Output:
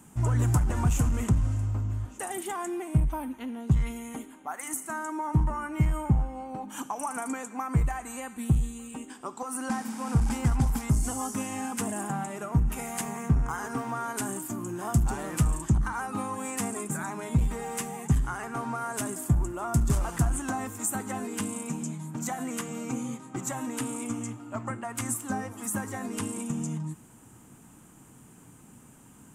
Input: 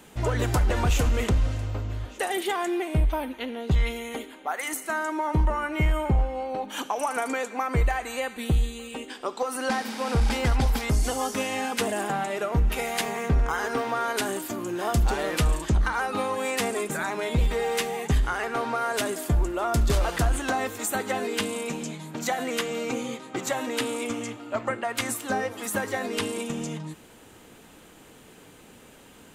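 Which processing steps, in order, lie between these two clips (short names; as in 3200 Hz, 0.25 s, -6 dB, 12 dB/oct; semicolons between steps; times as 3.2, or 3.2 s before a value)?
hard clip -17 dBFS, distortion -27 dB; graphic EQ 125/250/500/1000/2000/4000/8000 Hz +10/+5/-9/+4/-4/-12/+9 dB; gain -5 dB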